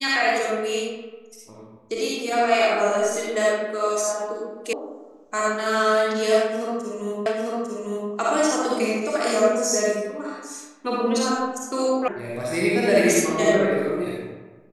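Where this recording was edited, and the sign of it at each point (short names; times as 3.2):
4.73 sound cut off
7.26 repeat of the last 0.85 s
12.08 sound cut off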